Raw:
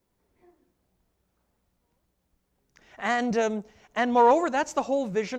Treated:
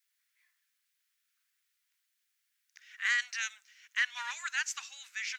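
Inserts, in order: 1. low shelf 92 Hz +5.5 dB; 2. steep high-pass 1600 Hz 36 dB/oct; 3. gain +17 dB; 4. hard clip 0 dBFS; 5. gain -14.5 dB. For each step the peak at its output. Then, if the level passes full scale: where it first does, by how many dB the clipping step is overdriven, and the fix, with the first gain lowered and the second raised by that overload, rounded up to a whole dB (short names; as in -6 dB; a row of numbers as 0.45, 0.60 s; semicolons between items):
-10.5, -19.0, -2.0, -2.0, -16.5 dBFS; no overload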